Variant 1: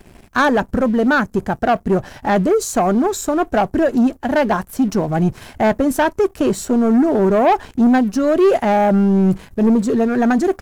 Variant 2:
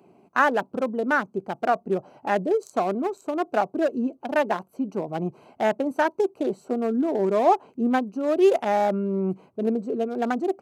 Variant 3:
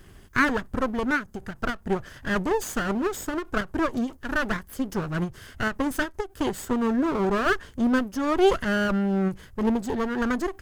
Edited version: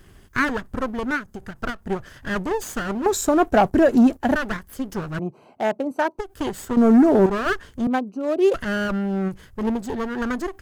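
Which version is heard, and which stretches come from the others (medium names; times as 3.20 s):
3
3.06–4.35 s: from 1
5.19–6.19 s: from 2
6.77–7.26 s: from 1
7.87–8.54 s: from 2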